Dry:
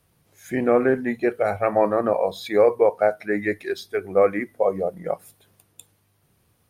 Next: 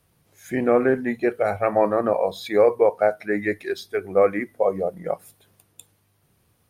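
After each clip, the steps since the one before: nothing audible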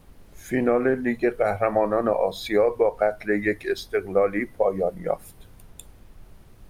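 compressor 4:1, threshold -18 dBFS, peak gain reduction 6 dB; added noise brown -48 dBFS; gain +1.5 dB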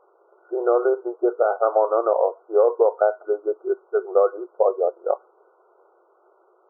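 brick-wall FIR band-pass 340–1500 Hz; gain +3 dB

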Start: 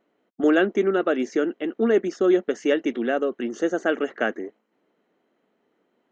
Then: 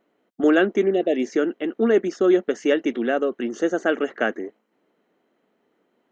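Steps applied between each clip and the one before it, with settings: spectral repair 0.88–1.21, 780–1700 Hz both; gain +1.5 dB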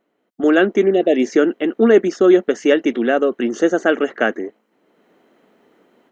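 AGC gain up to 13.5 dB; gain -1 dB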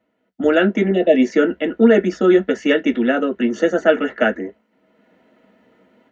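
reverb RT60 0.10 s, pre-delay 3 ms, DRR 3 dB; gain -7.5 dB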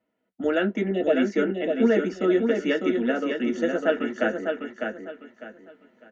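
feedback echo 0.602 s, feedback 28%, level -5 dB; gain -8.5 dB

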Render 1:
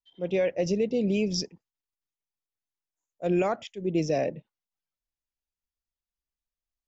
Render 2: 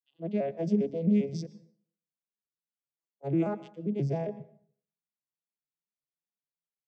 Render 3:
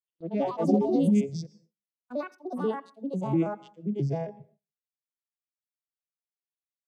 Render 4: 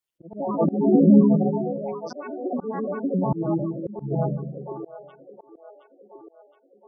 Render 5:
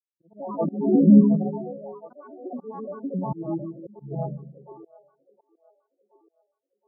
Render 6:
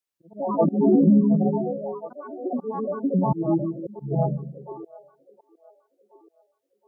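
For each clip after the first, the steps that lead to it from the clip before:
arpeggiated vocoder minor triad, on C#3, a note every 0.133 s; plate-style reverb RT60 0.54 s, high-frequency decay 0.8×, pre-delay 0.105 s, DRR 18 dB; gain -1.5 dB
spectral noise reduction 9 dB; echoes that change speed 0.142 s, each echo +5 st, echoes 2; gate with hold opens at -52 dBFS; gain +2 dB
split-band echo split 410 Hz, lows 0.144 s, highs 0.719 s, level -5 dB; spectral gate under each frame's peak -20 dB strong; auto swell 0.247 s; gain +7 dB
synth low-pass 1200 Hz, resonance Q 1.7; spectral expander 1.5:1
compressor 6:1, threshold -21 dBFS, peak gain reduction 12 dB; gain +7 dB

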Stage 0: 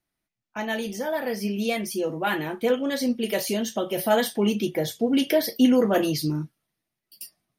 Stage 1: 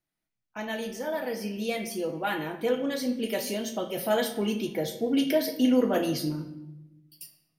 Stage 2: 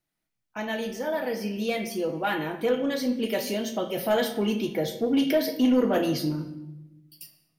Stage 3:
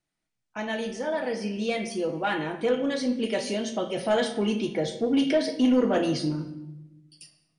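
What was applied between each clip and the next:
shoebox room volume 360 m³, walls mixed, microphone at 0.55 m; gain -5 dB
dynamic EQ 9400 Hz, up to -6 dB, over -54 dBFS, Q 0.92; soft clip -16.5 dBFS, distortion -19 dB; gain +3 dB
brick-wall FIR low-pass 10000 Hz

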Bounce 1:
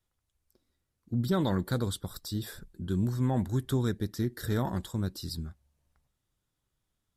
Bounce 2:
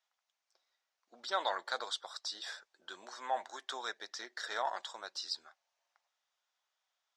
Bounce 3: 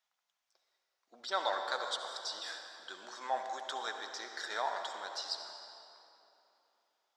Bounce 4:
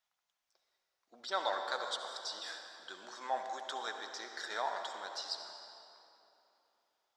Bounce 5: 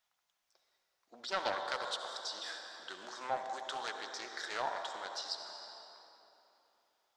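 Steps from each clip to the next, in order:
elliptic band-pass 680–6200 Hz, stop band 60 dB; gain +3.5 dB
reverb RT60 3.1 s, pre-delay 60 ms, DRR 4.5 dB
low shelf 230 Hz +5 dB; gain -1.5 dB
in parallel at -2 dB: compressor, threshold -48 dBFS, peak gain reduction 17.5 dB; on the sum: Doppler distortion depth 0.19 ms; gain -1.5 dB

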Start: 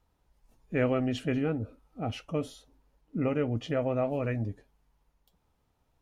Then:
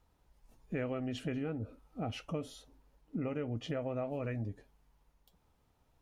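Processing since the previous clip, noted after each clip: compressor 4:1, threshold -36 dBFS, peak gain reduction 12 dB; gain +1 dB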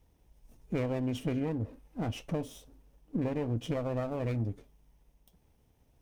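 minimum comb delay 0.33 ms; bell 2100 Hz -5.5 dB 2.9 oct; gain +6 dB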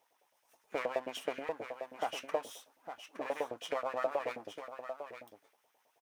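echo 0.866 s -9 dB; LFO high-pass saw up 9.4 Hz 550–1800 Hz; gain +1 dB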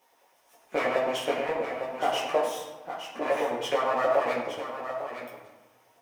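reverb RT60 1.2 s, pre-delay 5 ms, DRR -5 dB; gain +4.5 dB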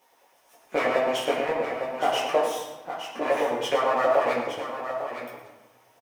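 echo 0.114 s -12 dB; gain +2.5 dB

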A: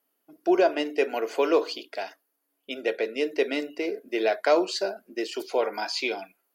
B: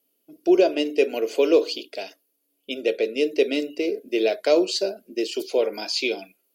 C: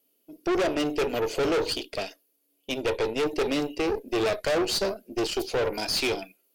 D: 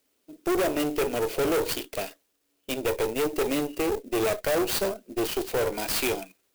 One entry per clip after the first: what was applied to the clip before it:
band shelf 1200 Hz -12.5 dB; gain +5 dB
tube stage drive 27 dB, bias 0.7; gain +5 dB
clock jitter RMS 0.044 ms

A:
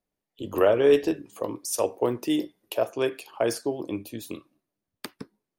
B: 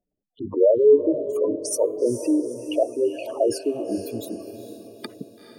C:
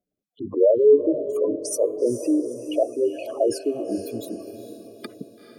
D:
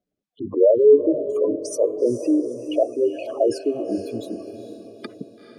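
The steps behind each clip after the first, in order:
spectral gate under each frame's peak -10 dB strong; diffused feedback echo 0.452 s, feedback 49%, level -10 dB; gain +4.5 dB
notch comb 910 Hz
air absorption 62 m; gain +2 dB

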